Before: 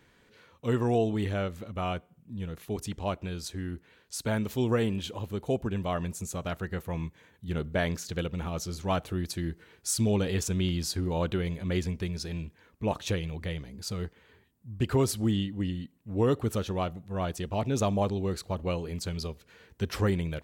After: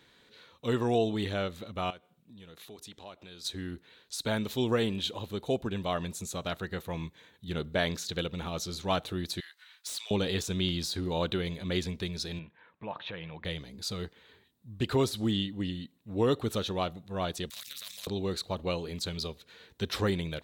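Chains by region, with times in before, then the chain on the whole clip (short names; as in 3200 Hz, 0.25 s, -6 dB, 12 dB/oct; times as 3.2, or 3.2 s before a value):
1.9–3.45 HPF 52 Hz + low shelf 230 Hz -8.5 dB + compressor 2.5:1, threshold -48 dBFS
9.4–10.11 HPF 1100 Hz 24 dB/oct + overloaded stage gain 35 dB
12.39–13.45 compressor 10:1, threshold -30 dBFS + speaker cabinet 150–2700 Hz, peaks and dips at 260 Hz -9 dB, 390 Hz -7 dB, 950 Hz +5 dB, 1600 Hz +3 dB
17.5–18.07 inverse Chebyshev high-pass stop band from 900 Hz, stop band 60 dB + level quantiser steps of 10 dB + spectral compressor 10:1
whole clip: bell 3800 Hz +12 dB 0.4 oct; de-esser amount 65%; low shelf 120 Hz -9 dB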